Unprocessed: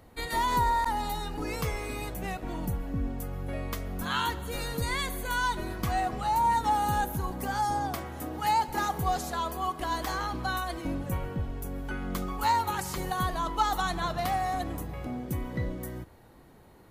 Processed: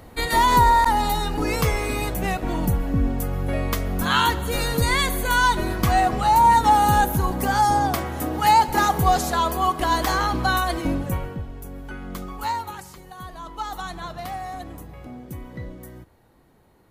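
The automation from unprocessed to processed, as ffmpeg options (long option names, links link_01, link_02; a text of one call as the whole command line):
ffmpeg -i in.wav -af "volume=19dB,afade=type=out:start_time=10.77:duration=0.67:silence=0.298538,afade=type=out:start_time=12.47:duration=0.55:silence=0.266073,afade=type=in:start_time=13.02:duration=0.79:silence=0.354813" out.wav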